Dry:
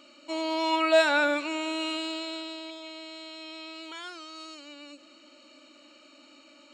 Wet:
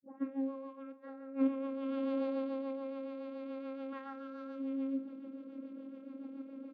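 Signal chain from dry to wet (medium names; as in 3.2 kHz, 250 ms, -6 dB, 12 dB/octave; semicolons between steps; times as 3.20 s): tape start-up on the opening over 0.49 s; low-pass 1.2 kHz 12 dB/octave; bass shelf 240 Hz +4.5 dB; compressor with a negative ratio -35 dBFS, ratio -0.5; vocoder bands 16, saw 270 Hz; rotary cabinet horn 7 Hz; doubling 45 ms -12.5 dB; delay 438 ms -19 dB; trim +1 dB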